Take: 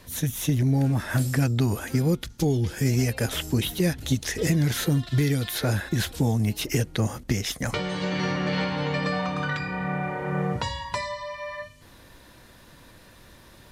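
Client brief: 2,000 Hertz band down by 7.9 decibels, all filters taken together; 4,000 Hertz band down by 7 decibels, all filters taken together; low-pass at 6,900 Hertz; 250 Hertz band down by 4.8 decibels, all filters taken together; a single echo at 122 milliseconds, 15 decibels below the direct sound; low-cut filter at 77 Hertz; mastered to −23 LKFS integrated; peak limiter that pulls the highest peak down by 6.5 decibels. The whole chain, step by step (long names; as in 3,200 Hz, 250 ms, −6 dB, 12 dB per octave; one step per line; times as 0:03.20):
high-pass filter 77 Hz
low-pass filter 6,900 Hz
parametric band 250 Hz −7 dB
parametric band 2,000 Hz −9 dB
parametric band 4,000 Hz −5.5 dB
brickwall limiter −22 dBFS
single-tap delay 122 ms −15 dB
level +8.5 dB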